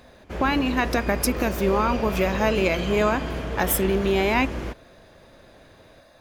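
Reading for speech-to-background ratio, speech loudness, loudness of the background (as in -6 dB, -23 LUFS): 7.0 dB, -23.5 LUFS, -30.5 LUFS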